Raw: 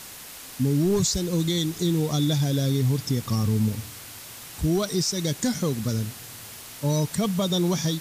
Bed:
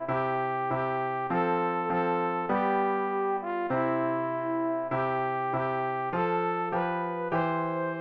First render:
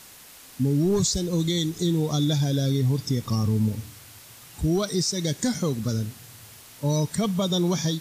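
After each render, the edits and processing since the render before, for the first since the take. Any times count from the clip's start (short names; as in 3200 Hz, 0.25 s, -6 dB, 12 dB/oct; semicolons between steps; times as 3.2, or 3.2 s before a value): noise print and reduce 6 dB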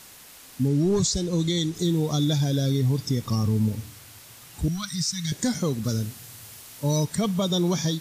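0.68–1.75 LPF 9700 Hz; 4.68–5.32 Chebyshev band-stop 160–1300 Hz; 5.84–7.05 high shelf 4900 Hz +4.5 dB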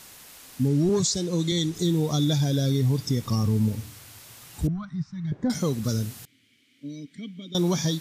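0.89–1.52 HPF 140 Hz; 4.67–5.5 LPF 1000 Hz; 6.25–7.55 vowel filter i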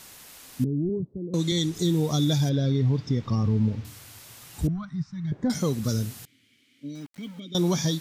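0.64–1.34 ladder low-pass 470 Hz, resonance 25%; 2.49–3.85 air absorption 190 m; 6.95–7.4 sample gate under -46 dBFS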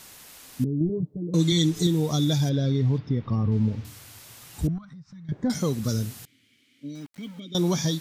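0.8–1.87 comb 6.6 ms, depth 83%; 2.98–3.52 air absorption 250 m; 4.78–5.29 compressor 12:1, threshold -41 dBFS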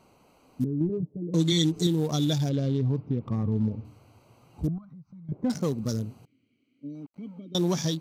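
Wiener smoothing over 25 samples; low shelf 110 Hz -8.5 dB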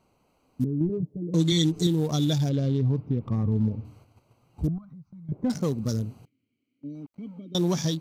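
low shelf 95 Hz +6.5 dB; gate -52 dBFS, range -8 dB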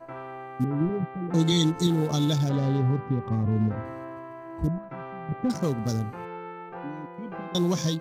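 add bed -10.5 dB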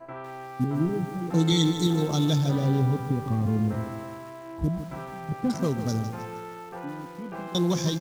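outdoor echo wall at 47 m, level -28 dB; lo-fi delay 0.154 s, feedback 55%, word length 7-bit, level -10.5 dB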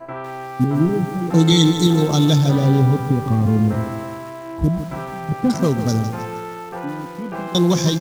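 gain +8.5 dB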